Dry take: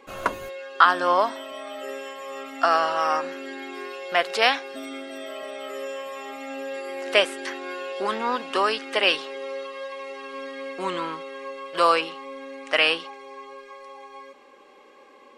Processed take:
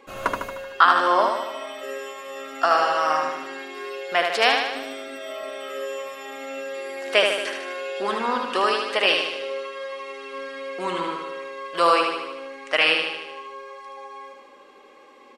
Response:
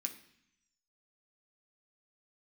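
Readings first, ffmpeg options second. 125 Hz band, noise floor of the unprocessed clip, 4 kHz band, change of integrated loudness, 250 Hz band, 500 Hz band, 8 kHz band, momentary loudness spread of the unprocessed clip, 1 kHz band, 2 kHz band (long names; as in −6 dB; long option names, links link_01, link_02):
can't be measured, −51 dBFS, +2.0 dB, +2.0 dB, +0.5 dB, +1.5 dB, +2.0 dB, 17 LU, +2.0 dB, +2.0 dB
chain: -af "aecho=1:1:76|152|228|304|380|456|532|608:0.596|0.351|0.207|0.122|0.0722|0.0426|0.0251|0.0148"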